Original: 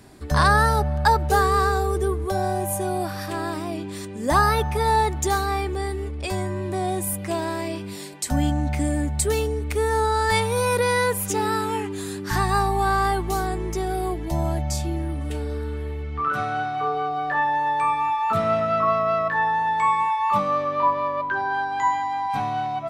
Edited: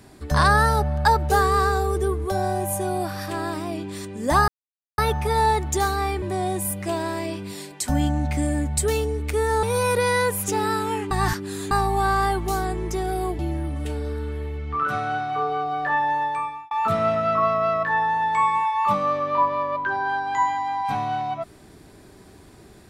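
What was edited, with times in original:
4.48 s: insert silence 0.50 s
5.72–6.64 s: delete
10.05–10.45 s: delete
11.93–12.53 s: reverse
14.21–14.84 s: delete
17.60–18.16 s: fade out

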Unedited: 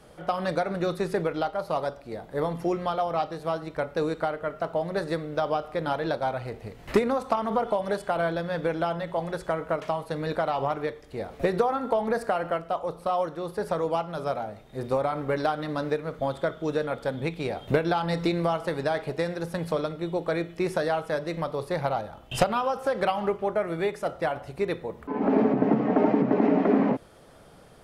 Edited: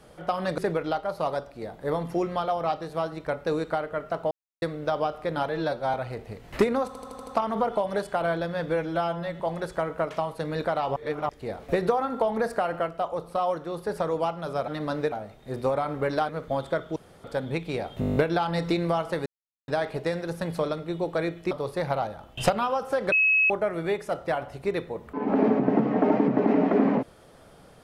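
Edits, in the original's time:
0.58–1.08 s: delete
4.81–5.12 s: mute
5.99–6.29 s: stretch 1.5×
7.22 s: stutter 0.08 s, 6 plays
8.63–9.11 s: stretch 1.5×
10.67–11.00 s: reverse
15.56–16.00 s: move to 14.39 s
16.67–16.95 s: room tone
17.71 s: stutter 0.02 s, 9 plays
18.81 s: insert silence 0.42 s
20.64–21.45 s: delete
23.06–23.44 s: bleep 2.57 kHz -17.5 dBFS

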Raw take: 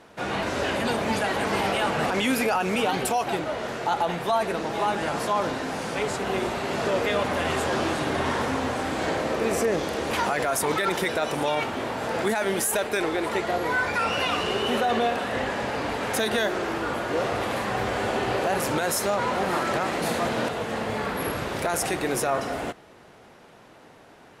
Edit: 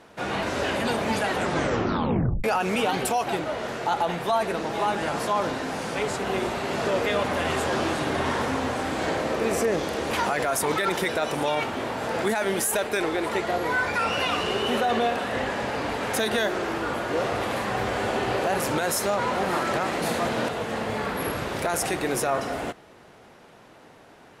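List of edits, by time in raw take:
1.30 s: tape stop 1.14 s

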